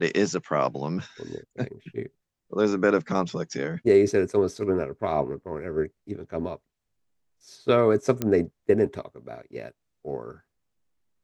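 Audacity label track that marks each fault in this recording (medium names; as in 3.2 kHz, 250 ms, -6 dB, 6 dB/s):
8.220000	8.220000	pop -12 dBFS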